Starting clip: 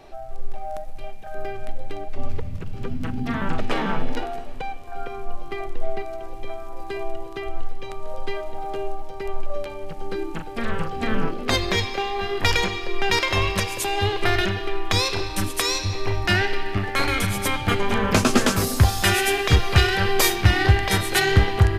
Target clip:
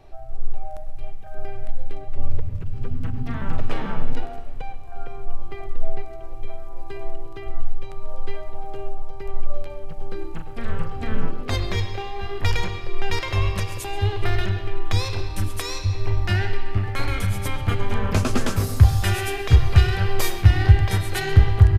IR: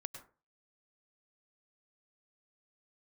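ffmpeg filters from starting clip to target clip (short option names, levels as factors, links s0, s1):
-filter_complex "[0:a]firequalizer=gain_entry='entry(100,0);entry(200,-10);entry(1700,-11);entry(4600,-6)':delay=0.05:min_phase=1,asplit=2[s0][s1];[s1]adelay=134.1,volume=0.141,highshelf=f=4000:g=-3.02[s2];[s0][s2]amix=inputs=2:normalize=0,asplit=2[s3][s4];[1:a]atrim=start_sample=2205,lowpass=3300[s5];[s4][s5]afir=irnorm=-1:irlink=0,volume=1.26[s6];[s3][s6]amix=inputs=2:normalize=0,volume=0.891"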